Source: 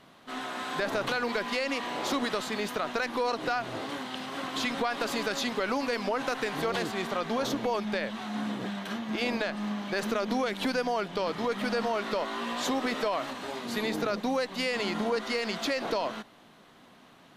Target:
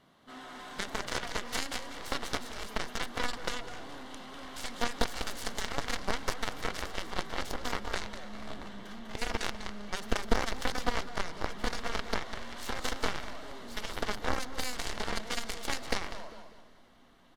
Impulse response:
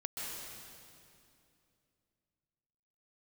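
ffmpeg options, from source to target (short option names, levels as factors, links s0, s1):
-filter_complex "[0:a]lowshelf=f=130:g=6,aecho=1:1:198|396|594|792:0.562|0.18|0.0576|0.0184,aeval=exprs='0.141*(cos(1*acos(clip(val(0)/0.141,-1,1)))-cos(1*PI/2))+0.00891*(cos(2*acos(clip(val(0)/0.141,-1,1)))-cos(2*PI/2))+0.0631*(cos(3*acos(clip(val(0)/0.141,-1,1)))-cos(3*PI/2))+0.00112*(cos(6*acos(clip(val(0)/0.141,-1,1)))-cos(6*PI/2))':c=same,bandreject=f=2500:w=11,asplit=2[s0][s1];[1:a]atrim=start_sample=2205[s2];[s1][s2]afir=irnorm=-1:irlink=0,volume=0.119[s3];[s0][s3]amix=inputs=2:normalize=0,asubboost=boost=3:cutoff=67"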